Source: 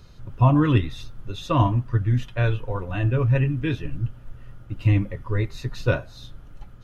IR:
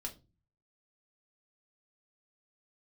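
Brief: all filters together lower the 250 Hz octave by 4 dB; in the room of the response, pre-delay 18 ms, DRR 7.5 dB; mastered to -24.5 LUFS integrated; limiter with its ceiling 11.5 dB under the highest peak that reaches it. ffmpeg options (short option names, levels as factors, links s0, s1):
-filter_complex "[0:a]equalizer=f=250:t=o:g=-6,alimiter=limit=0.112:level=0:latency=1,asplit=2[s0][s1];[1:a]atrim=start_sample=2205,adelay=18[s2];[s1][s2]afir=irnorm=-1:irlink=0,volume=0.531[s3];[s0][s3]amix=inputs=2:normalize=0,volume=1.68"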